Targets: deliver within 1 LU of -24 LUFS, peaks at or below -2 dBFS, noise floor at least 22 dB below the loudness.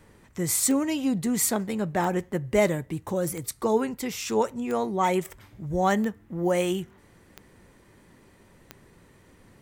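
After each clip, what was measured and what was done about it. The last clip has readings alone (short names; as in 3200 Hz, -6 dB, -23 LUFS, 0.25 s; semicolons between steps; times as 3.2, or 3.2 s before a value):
clicks 7; loudness -26.5 LUFS; peak -9.5 dBFS; loudness target -24.0 LUFS
-> de-click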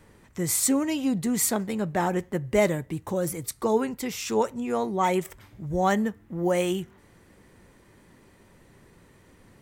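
clicks 0; loudness -26.5 LUFS; peak -9.5 dBFS; loudness target -24.0 LUFS
-> gain +2.5 dB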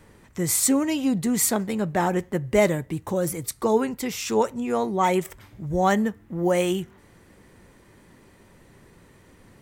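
loudness -24.0 LUFS; peak -7.0 dBFS; noise floor -54 dBFS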